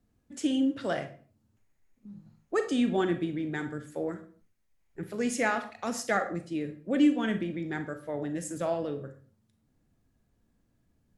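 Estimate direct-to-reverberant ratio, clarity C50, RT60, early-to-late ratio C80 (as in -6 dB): 8.0 dB, 11.0 dB, 0.45 s, 15.5 dB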